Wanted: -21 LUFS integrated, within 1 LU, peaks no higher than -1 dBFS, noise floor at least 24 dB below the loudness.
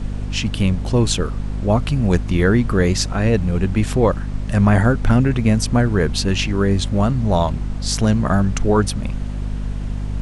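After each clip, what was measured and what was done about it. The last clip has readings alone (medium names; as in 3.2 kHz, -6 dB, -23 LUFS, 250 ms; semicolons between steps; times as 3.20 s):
hum 50 Hz; highest harmonic 250 Hz; hum level -22 dBFS; noise floor -26 dBFS; noise floor target -43 dBFS; loudness -19.0 LUFS; peak level -2.0 dBFS; loudness target -21.0 LUFS
-> hum notches 50/100/150/200/250 Hz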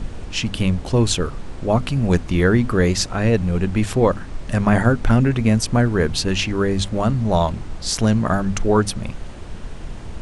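hum not found; noise floor -33 dBFS; noise floor target -44 dBFS
-> noise print and reduce 11 dB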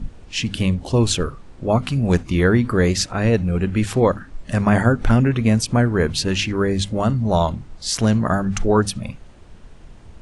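noise floor -43 dBFS; noise floor target -44 dBFS
-> noise print and reduce 6 dB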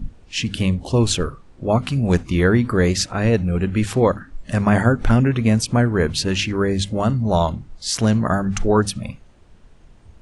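noise floor -48 dBFS; loudness -19.5 LUFS; peak level -3.5 dBFS; loudness target -21.0 LUFS
-> trim -1.5 dB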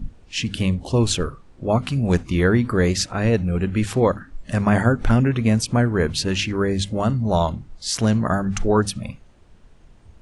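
loudness -21.0 LUFS; peak level -5.0 dBFS; noise floor -50 dBFS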